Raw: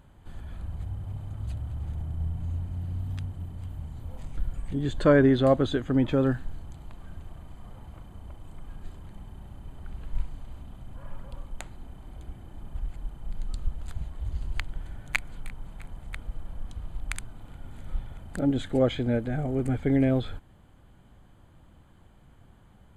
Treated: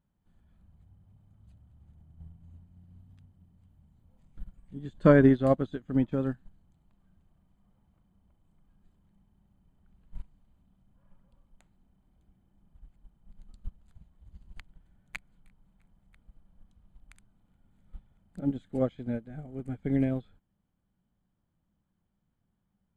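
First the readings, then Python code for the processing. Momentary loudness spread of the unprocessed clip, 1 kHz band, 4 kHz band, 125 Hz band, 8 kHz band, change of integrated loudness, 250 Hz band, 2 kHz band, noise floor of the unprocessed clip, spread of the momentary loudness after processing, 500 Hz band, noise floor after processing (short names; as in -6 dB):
22 LU, -3.5 dB, under -15 dB, -5.0 dB, under -15 dB, +1.5 dB, -2.5 dB, -5.5 dB, -55 dBFS, 24 LU, -3.0 dB, -78 dBFS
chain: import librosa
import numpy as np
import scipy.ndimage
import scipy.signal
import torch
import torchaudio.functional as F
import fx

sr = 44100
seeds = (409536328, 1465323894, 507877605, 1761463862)

y = fx.peak_eq(x, sr, hz=190.0, db=11.0, octaves=0.55)
y = fx.upward_expand(y, sr, threshold_db=-31.0, expansion=2.5)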